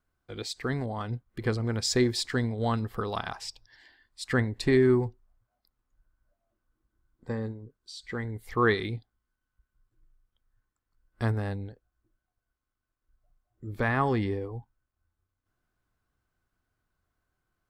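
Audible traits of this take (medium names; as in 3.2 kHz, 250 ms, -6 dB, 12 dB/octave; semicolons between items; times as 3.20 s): noise floor -85 dBFS; spectral tilt -5.0 dB/octave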